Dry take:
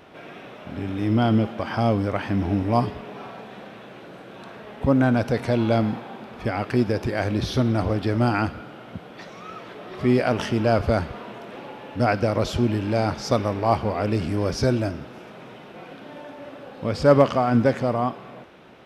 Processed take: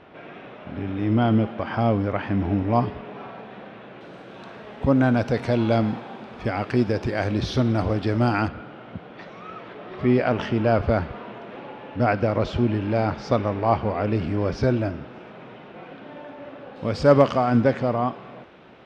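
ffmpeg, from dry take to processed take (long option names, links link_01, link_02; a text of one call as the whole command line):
ffmpeg -i in.wav -af "asetnsamples=nb_out_samples=441:pad=0,asendcmd='4.01 lowpass f 6600;8.48 lowpass f 3200;16.76 lowpass f 7200;17.61 lowpass f 4400',lowpass=3100" out.wav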